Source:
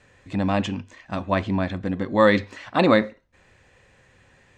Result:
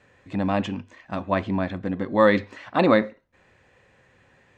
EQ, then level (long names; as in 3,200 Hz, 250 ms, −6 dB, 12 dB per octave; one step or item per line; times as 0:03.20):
low-shelf EQ 72 Hz −11 dB
high-shelf EQ 3,800 Hz −9 dB
0.0 dB